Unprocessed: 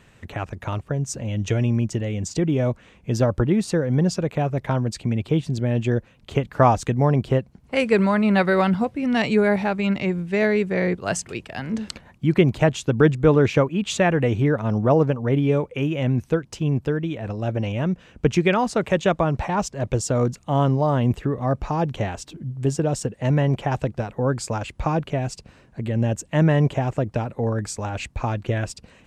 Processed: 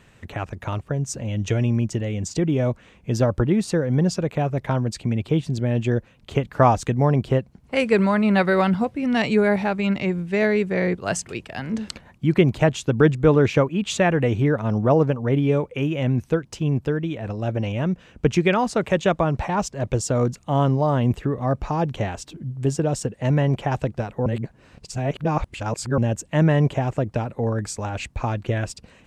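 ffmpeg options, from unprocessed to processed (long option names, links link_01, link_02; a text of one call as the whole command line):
ffmpeg -i in.wav -filter_complex "[0:a]asplit=3[link_01][link_02][link_03];[link_01]atrim=end=24.262[link_04];[link_02]atrim=start=24.258:end=25.982,asetpts=PTS-STARTPTS,areverse[link_05];[link_03]atrim=start=25.978[link_06];[link_04][link_05]acrossfade=duration=0.004:curve1=hsin:curve2=hsin[link_07];[link_07][link_06]acrossfade=duration=0.004:curve1=hsin:curve2=hsin" out.wav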